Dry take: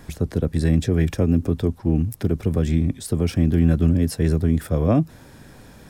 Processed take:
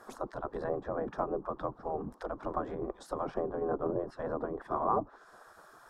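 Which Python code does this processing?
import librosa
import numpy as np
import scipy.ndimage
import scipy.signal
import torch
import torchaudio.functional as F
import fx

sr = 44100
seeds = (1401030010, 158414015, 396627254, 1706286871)

y = fx.env_lowpass_down(x, sr, base_hz=980.0, full_db=-13.5)
y = fx.high_shelf_res(y, sr, hz=1600.0, db=-13.0, q=3.0)
y = fx.spec_gate(y, sr, threshold_db=-15, keep='weak')
y = y * 10.0 ** (2.0 / 20.0)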